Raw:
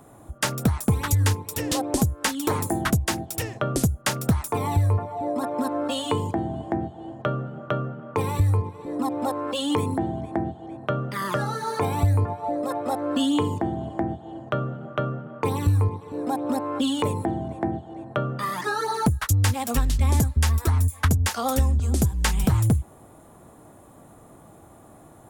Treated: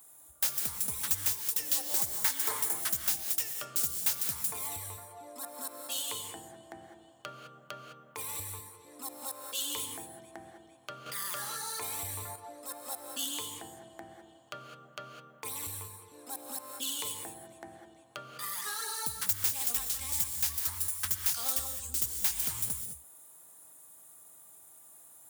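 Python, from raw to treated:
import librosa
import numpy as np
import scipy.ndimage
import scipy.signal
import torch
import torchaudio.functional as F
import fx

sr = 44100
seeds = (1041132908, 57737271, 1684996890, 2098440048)

y = fx.tracing_dist(x, sr, depth_ms=0.16)
y = F.preemphasis(torch.from_numpy(y), 0.97).numpy()
y = fx.spec_box(y, sr, start_s=1.9, length_s=0.74, low_hz=360.0, high_hz=2300.0, gain_db=6)
y = fx.high_shelf(y, sr, hz=5800.0, db=5.0)
y = 10.0 ** (-18.5 / 20.0) * np.tanh(y / 10.0 ** (-18.5 / 20.0))
y = fx.rev_gated(y, sr, seeds[0], gate_ms=230, shape='rising', drr_db=5.5)
y = fx.env_flatten(y, sr, amount_pct=50, at=(11.06, 12.36))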